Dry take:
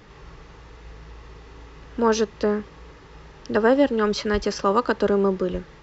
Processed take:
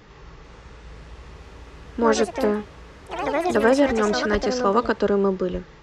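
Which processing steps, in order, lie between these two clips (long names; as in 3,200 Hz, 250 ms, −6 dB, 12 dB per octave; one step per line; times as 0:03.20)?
delay with pitch and tempo change per echo 446 ms, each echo +4 semitones, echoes 3, each echo −6 dB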